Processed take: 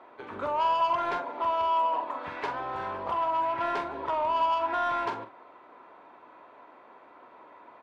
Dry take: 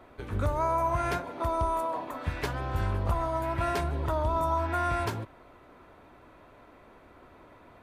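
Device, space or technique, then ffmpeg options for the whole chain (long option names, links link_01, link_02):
intercom: -filter_complex "[0:a]highpass=330,lowpass=3500,equalizer=frequency=950:width_type=o:width=0.51:gain=7.5,asoftclip=type=tanh:threshold=-21dB,asplit=2[link_01][link_02];[link_02]adelay=44,volume=-9dB[link_03];[link_01][link_03]amix=inputs=2:normalize=0"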